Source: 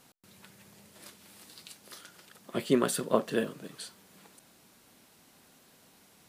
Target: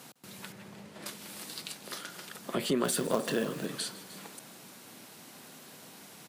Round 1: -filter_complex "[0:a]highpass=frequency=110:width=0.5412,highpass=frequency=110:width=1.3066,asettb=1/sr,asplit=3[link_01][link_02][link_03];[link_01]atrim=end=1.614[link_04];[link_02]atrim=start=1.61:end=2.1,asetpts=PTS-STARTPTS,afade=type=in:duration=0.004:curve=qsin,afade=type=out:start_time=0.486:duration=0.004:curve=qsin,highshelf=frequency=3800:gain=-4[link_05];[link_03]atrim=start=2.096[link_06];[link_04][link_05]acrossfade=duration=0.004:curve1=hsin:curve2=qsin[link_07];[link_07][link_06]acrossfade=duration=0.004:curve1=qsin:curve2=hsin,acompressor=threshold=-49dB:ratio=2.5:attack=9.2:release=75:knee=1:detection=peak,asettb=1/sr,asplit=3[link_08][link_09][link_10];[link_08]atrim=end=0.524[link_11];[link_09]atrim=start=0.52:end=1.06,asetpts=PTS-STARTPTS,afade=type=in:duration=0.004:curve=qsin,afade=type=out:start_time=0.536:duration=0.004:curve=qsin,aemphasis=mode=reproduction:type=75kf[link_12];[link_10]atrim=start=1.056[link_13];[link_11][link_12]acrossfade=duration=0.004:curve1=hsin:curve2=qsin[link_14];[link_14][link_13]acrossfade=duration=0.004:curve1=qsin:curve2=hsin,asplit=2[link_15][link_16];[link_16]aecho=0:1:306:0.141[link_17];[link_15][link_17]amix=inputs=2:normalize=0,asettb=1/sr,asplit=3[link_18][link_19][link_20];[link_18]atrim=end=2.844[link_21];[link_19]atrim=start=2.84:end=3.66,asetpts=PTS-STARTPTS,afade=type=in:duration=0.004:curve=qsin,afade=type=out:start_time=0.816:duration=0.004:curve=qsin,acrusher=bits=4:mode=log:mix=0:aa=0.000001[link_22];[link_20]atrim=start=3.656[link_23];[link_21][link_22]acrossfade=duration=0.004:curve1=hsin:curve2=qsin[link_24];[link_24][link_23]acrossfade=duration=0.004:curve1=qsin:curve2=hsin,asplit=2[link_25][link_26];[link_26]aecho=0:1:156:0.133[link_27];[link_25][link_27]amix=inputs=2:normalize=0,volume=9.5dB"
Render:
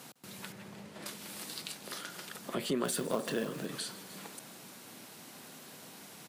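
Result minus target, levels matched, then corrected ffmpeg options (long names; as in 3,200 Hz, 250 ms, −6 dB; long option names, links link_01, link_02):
downward compressor: peak gain reduction +3.5 dB
-filter_complex "[0:a]highpass=frequency=110:width=0.5412,highpass=frequency=110:width=1.3066,asettb=1/sr,asplit=3[link_01][link_02][link_03];[link_01]atrim=end=1.614[link_04];[link_02]atrim=start=1.61:end=2.1,asetpts=PTS-STARTPTS,afade=type=in:duration=0.004:curve=qsin,afade=type=out:start_time=0.486:duration=0.004:curve=qsin,highshelf=frequency=3800:gain=-4[link_05];[link_03]atrim=start=2.096[link_06];[link_04][link_05]acrossfade=duration=0.004:curve1=hsin:curve2=qsin[link_07];[link_07][link_06]acrossfade=duration=0.004:curve1=qsin:curve2=hsin,acompressor=threshold=-43dB:ratio=2.5:attack=9.2:release=75:knee=1:detection=peak,asettb=1/sr,asplit=3[link_08][link_09][link_10];[link_08]atrim=end=0.524[link_11];[link_09]atrim=start=0.52:end=1.06,asetpts=PTS-STARTPTS,afade=type=in:duration=0.004:curve=qsin,afade=type=out:start_time=0.536:duration=0.004:curve=qsin,aemphasis=mode=reproduction:type=75kf[link_12];[link_10]atrim=start=1.056[link_13];[link_11][link_12]acrossfade=duration=0.004:curve1=hsin:curve2=qsin[link_14];[link_14][link_13]acrossfade=duration=0.004:curve1=qsin:curve2=hsin,asplit=2[link_15][link_16];[link_16]aecho=0:1:306:0.141[link_17];[link_15][link_17]amix=inputs=2:normalize=0,asettb=1/sr,asplit=3[link_18][link_19][link_20];[link_18]atrim=end=2.844[link_21];[link_19]atrim=start=2.84:end=3.66,asetpts=PTS-STARTPTS,afade=type=in:duration=0.004:curve=qsin,afade=type=out:start_time=0.816:duration=0.004:curve=qsin,acrusher=bits=4:mode=log:mix=0:aa=0.000001[link_22];[link_20]atrim=start=3.656[link_23];[link_21][link_22]acrossfade=duration=0.004:curve1=hsin:curve2=qsin[link_24];[link_24][link_23]acrossfade=duration=0.004:curve1=qsin:curve2=hsin,asplit=2[link_25][link_26];[link_26]aecho=0:1:156:0.133[link_27];[link_25][link_27]amix=inputs=2:normalize=0,volume=9.5dB"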